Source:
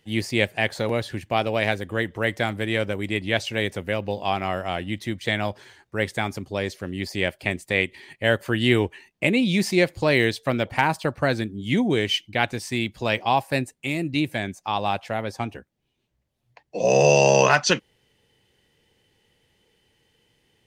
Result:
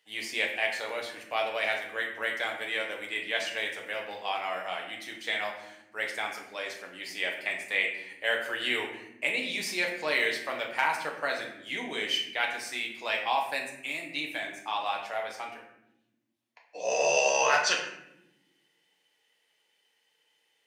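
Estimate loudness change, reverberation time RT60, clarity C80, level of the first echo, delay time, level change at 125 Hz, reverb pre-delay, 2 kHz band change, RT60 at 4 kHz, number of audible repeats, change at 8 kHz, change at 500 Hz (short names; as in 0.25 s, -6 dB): -6.5 dB, 0.90 s, 8.5 dB, none, none, -29.5 dB, 6 ms, -3.5 dB, 0.55 s, none, -4.0 dB, -10.0 dB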